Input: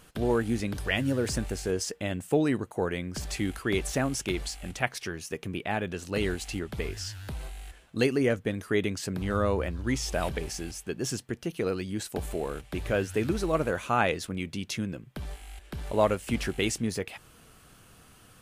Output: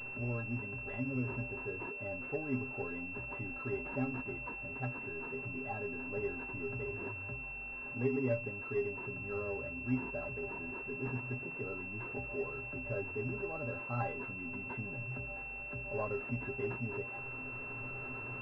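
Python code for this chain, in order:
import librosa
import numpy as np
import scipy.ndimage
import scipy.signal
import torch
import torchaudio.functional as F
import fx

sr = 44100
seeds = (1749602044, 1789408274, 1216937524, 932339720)

p1 = x + 0.5 * 10.0 ** (-31.0 / 20.0) * np.sign(x)
p2 = fx.stiff_resonator(p1, sr, f0_hz=120.0, decay_s=0.32, stiffness=0.03)
p3 = fx.rider(p2, sr, range_db=10, speed_s=2.0)
p4 = p2 + F.gain(torch.from_numpy(p3), -1.0).numpy()
p5 = fx.pwm(p4, sr, carrier_hz=2700.0)
y = F.gain(torch.from_numpy(p5), -7.0).numpy()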